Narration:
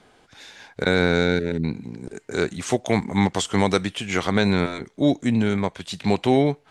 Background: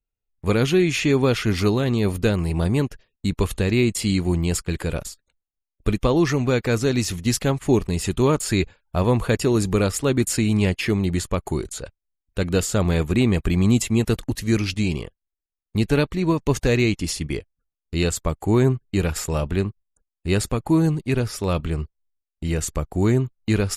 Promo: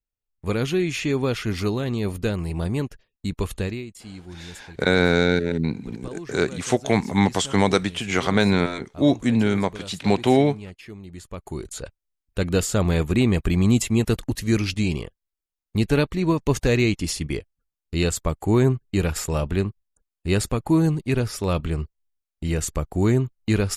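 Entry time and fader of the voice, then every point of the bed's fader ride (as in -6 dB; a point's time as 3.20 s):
4.00 s, +1.0 dB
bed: 3.65 s -4.5 dB
3.86 s -18.5 dB
11.07 s -18.5 dB
11.82 s -0.5 dB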